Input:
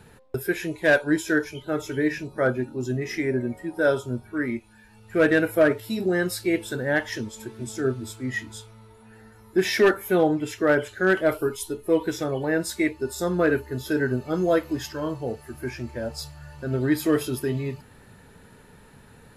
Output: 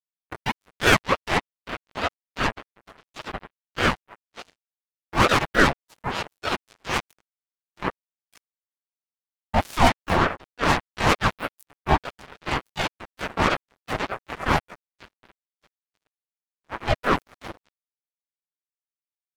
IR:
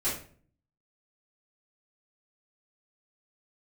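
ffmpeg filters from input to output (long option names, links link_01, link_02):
-filter_complex "[0:a]acrusher=bits=2:mix=0:aa=0.5,asplit=4[link_01][link_02][link_03][link_04];[link_02]asetrate=37084,aresample=44100,atempo=1.18921,volume=0dB[link_05];[link_03]asetrate=52444,aresample=44100,atempo=0.840896,volume=-5dB[link_06];[link_04]asetrate=66075,aresample=44100,atempo=0.66742,volume=-1dB[link_07];[link_01][link_05][link_06][link_07]amix=inputs=4:normalize=0,aeval=exprs='val(0)*sin(2*PI*660*n/s+660*0.5/3.4*sin(2*PI*3.4*n/s))':channel_layout=same,volume=-2.5dB"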